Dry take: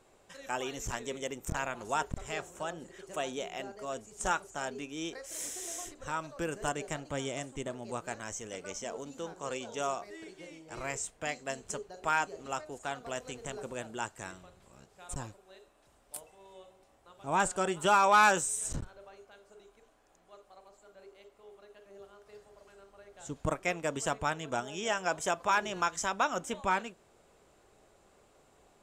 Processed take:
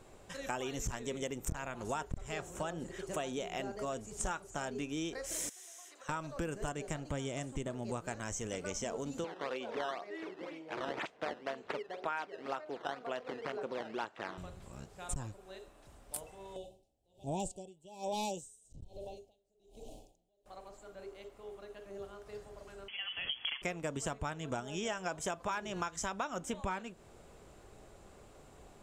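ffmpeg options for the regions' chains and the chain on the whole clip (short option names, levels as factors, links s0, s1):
-filter_complex "[0:a]asettb=1/sr,asplit=3[s0][s1][s2];[s0]atrim=end=5.494[s3];[s1]atrim=start=5.49:end=6.09,asetpts=PTS-STARTPTS,afade=t=in:d=0.004:c=qsin,afade=t=out:st=0.596:d=0.004:c=qsin,highpass=830,bandreject=f=7600:w=14,acompressor=threshold=0.002:ratio=6:attack=3.2:release=140:knee=1:detection=peak[s4];[s2]atrim=start=6.086[s5];[s3][s4]acrossfade=d=0.004:c1=hsin:c2=qsin[s6];[s6][s5]acrossfade=d=0.004:c1=qsin:c2=hsin,asettb=1/sr,asplit=3[s7][s8][s9];[s7]atrim=end=9.244[s10];[s8]atrim=start=9.24:end=14.38,asetpts=PTS-STARTPTS,afade=t=in:d=0.004:c=qsin,afade=t=out:st=5.136:d=0.004:c=qsin,acrusher=samples=11:mix=1:aa=0.000001:lfo=1:lforange=17.6:lforate=2,highpass=340,lowpass=3300[s11];[s9]atrim=start=14.376[s12];[s10][s11]acrossfade=d=0.004:c1=hsin:c2=qsin[s13];[s13][s12]acrossfade=d=0.004:c1=qsin:c2=hsin,asettb=1/sr,asplit=3[s14][s15][s16];[s14]atrim=end=16.564[s17];[s15]atrim=start=16.56:end=20.46,asetpts=PTS-STARTPTS,afade=t=in:d=0.004:c=qsin,afade=t=out:st=3.896:d=0.004:c=qsin,asuperstop=centerf=1500:order=8:qfactor=0.73,acompressor=mode=upward:threshold=0.00708:ratio=2.5:attack=3.2:release=140:knee=2.83:detection=peak,aeval=exprs='val(0)*pow(10,-34*(0.5-0.5*cos(2*PI*1.2*n/s))/20)':c=same[s18];[s16]atrim=start=20.456[s19];[s17][s18]acrossfade=d=0.004:c1=hsin:c2=qsin[s20];[s20][s19]acrossfade=d=0.004:c1=qsin:c2=hsin,asettb=1/sr,asplit=3[s21][s22][s23];[s21]atrim=end=22.884[s24];[s22]atrim=start=22.88:end=23.62,asetpts=PTS-STARTPTS,afade=t=in:d=0.004:c=qsin,afade=t=out:st=0.736:d=0.004:c=qsin,acompressor=threshold=0.0112:ratio=2.5:attack=3.2:release=140:knee=1:detection=peak,aeval=exprs='0.0501*sin(PI/2*2*val(0)/0.0501)':c=same,lowpass=f=2900:t=q:w=0.5098,lowpass=f=2900:t=q:w=0.6013,lowpass=f=2900:t=q:w=0.9,lowpass=f=2900:t=q:w=2.563,afreqshift=-3400[s25];[s23]atrim=start=23.616[s26];[s24][s25]acrossfade=d=0.004:c1=hsin:c2=qsin[s27];[s27][s26]acrossfade=d=0.004:c1=qsin:c2=hsin,lowshelf=f=220:g=9,acompressor=threshold=0.0112:ratio=5,volume=1.58"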